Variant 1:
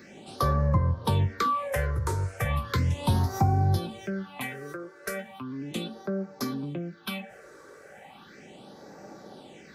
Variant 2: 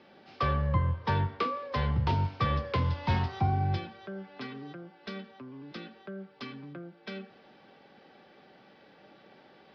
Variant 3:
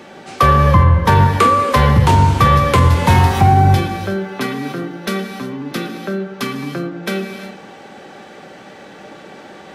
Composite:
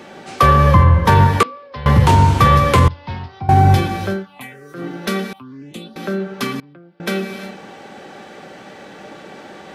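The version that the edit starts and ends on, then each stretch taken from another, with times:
3
1.43–1.86 s: from 2
2.88–3.49 s: from 2
4.19–4.80 s: from 1, crossfade 0.16 s
5.33–5.96 s: from 1
6.60–7.00 s: from 2

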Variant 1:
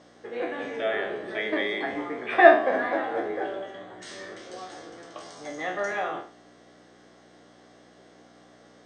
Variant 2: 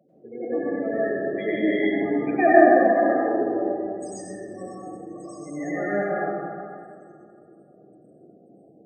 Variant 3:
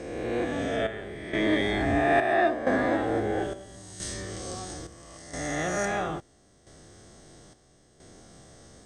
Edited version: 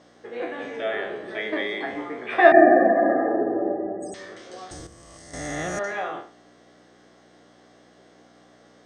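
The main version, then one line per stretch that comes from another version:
1
2.52–4.14 s: from 2
4.71–5.79 s: from 3

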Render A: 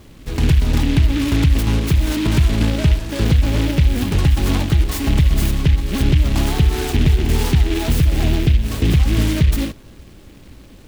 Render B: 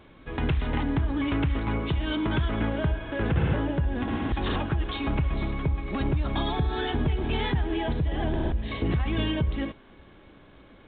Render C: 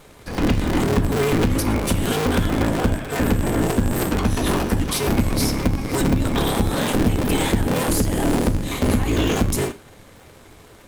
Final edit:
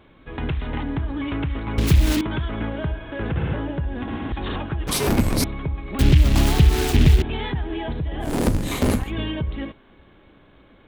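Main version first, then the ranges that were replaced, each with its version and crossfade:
B
1.78–2.21 s: from A
4.87–5.44 s: from C
5.99–7.22 s: from A
8.32–9.00 s: from C, crossfade 0.24 s

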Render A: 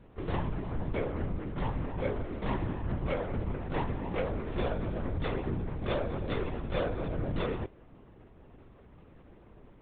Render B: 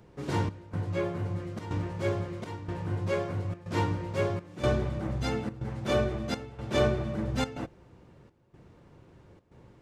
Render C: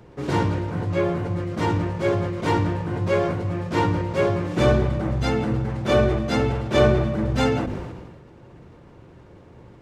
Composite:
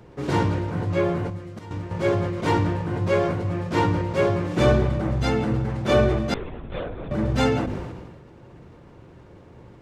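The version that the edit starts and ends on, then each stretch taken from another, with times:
C
1.30–1.91 s: from B
6.34–7.11 s: from A

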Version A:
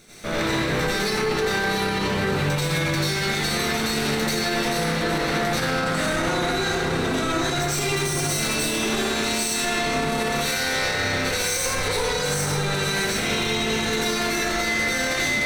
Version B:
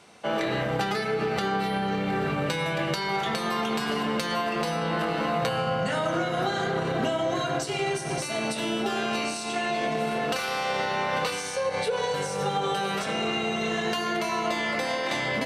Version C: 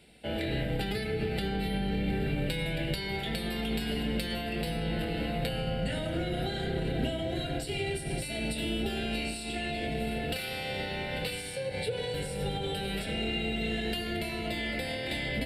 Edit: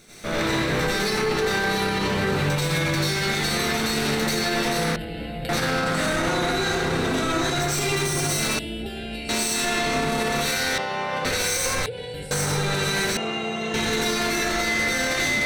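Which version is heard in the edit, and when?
A
4.96–5.49 s: from C
8.59–9.29 s: from C
10.78–11.25 s: from B
11.86–12.31 s: from C
13.17–13.74 s: from B

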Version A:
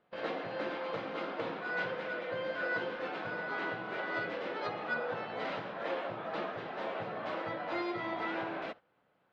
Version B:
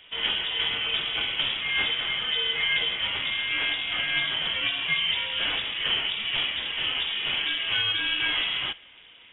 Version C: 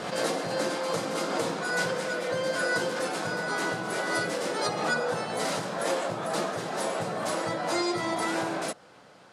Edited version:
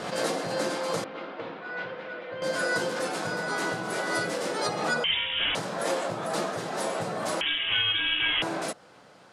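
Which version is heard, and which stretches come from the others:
C
1.04–2.42 s: from A
5.04–5.55 s: from B
7.41–8.42 s: from B

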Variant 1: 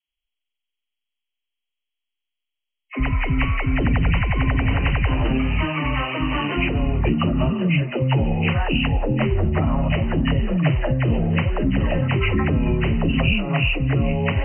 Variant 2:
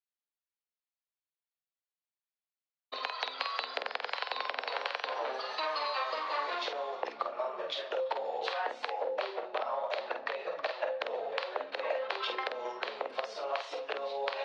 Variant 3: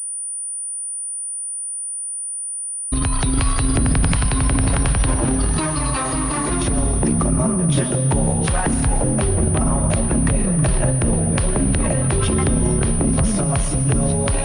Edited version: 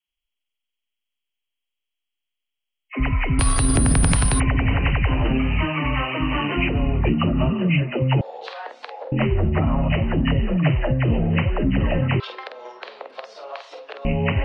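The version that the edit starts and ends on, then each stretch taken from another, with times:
1
3.39–4.40 s: from 3
8.21–9.12 s: from 2
12.20–14.05 s: from 2

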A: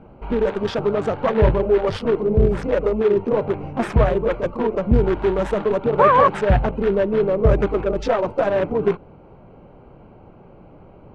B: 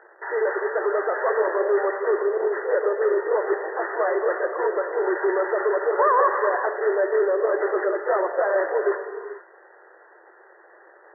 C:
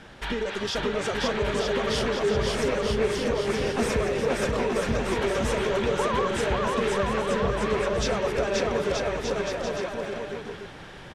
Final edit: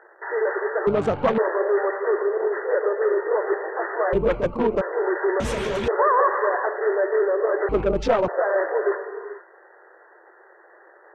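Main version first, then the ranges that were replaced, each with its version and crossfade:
B
0.87–1.38 s: from A
4.13–4.81 s: from A
5.40–5.88 s: from C
7.69–8.28 s: from A

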